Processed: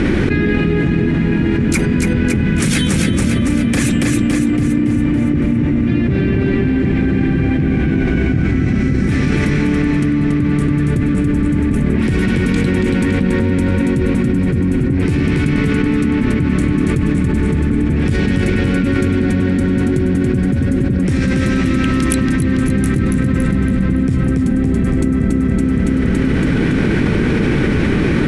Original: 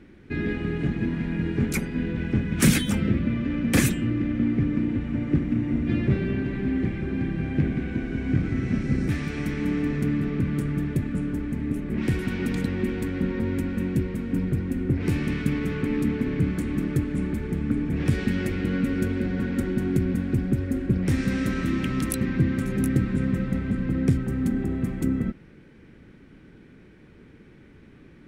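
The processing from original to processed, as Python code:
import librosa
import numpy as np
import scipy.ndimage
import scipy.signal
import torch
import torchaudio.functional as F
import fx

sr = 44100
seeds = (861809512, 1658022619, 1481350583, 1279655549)

p1 = scipy.signal.sosfilt(scipy.signal.butter(8, 11000.0, 'lowpass', fs=sr, output='sos'), x)
p2 = p1 + fx.echo_feedback(p1, sr, ms=281, feedback_pct=50, wet_db=-5.0, dry=0)
y = fx.env_flatten(p2, sr, amount_pct=100)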